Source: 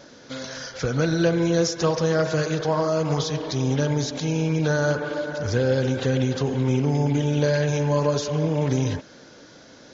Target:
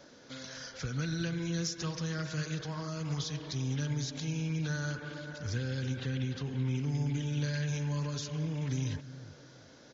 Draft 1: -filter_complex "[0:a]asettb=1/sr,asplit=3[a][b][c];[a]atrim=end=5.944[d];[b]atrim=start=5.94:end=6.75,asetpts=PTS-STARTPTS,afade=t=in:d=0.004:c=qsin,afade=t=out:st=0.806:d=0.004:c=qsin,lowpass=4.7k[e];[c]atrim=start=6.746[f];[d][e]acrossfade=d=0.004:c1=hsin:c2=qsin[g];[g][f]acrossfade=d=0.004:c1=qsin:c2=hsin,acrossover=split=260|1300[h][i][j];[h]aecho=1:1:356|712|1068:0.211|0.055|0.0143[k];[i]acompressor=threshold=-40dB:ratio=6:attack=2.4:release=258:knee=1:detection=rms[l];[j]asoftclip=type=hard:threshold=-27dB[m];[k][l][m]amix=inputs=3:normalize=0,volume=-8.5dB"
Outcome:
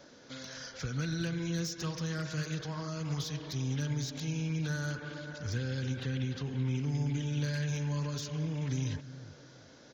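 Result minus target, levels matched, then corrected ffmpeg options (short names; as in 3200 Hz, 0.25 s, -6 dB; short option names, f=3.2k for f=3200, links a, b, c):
hard clip: distortion +21 dB
-filter_complex "[0:a]asettb=1/sr,asplit=3[a][b][c];[a]atrim=end=5.944[d];[b]atrim=start=5.94:end=6.75,asetpts=PTS-STARTPTS,afade=t=in:d=0.004:c=qsin,afade=t=out:st=0.806:d=0.004:c=qsin,lowpass=4.7k[e];[c]atrim=start=6.746[f];[d][e]acrossfade=d=0.004:c1=hsin:c2=qsin[g];[g][f]acrossfade=d=0.004:c1=qsin:c2=hsin,acrossover=split=260|1300[h][i][j];[h]aecho=1:1:356|712|1068:0.211|0.055|0.0143[k];[i]acompressor=threshold=-40dB:ratio=6:attack=2.4:release=258:knee=1:detection=rms[l];[j]asoftclip=type=hard:threshold=-16.5dB[m];[k][l][m]amix=inputs=3:normalize=0,volume=-8.5dB"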